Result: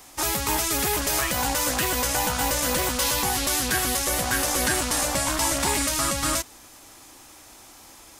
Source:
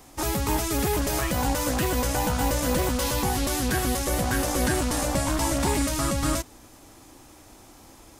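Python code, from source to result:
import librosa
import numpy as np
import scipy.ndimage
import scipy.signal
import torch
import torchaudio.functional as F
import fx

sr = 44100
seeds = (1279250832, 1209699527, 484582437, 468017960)

y = fx.tilt_shelf(x, sr, db=-6.0, hz=690.0)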